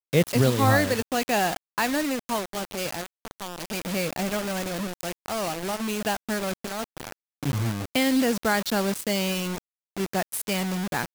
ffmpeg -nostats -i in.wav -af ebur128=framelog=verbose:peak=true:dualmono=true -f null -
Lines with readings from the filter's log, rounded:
Integrated loudness:
  I:         -23.4 LUFS
  Threshold: -33.7 LUFS
Loudness range:
  LRA:         5.2 LU
  Threshold: -44.6 LUFS
  LRA low:   -27.3 LUFS
  LRA high:  -22.1 LUFS
True peak:
  Peak:       -7.3 dBFS